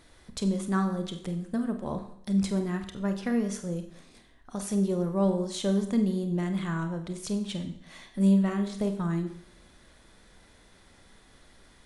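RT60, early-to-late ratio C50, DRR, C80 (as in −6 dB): 0.65 s, 9.5 dB, 6.5 dB, 12.0 dB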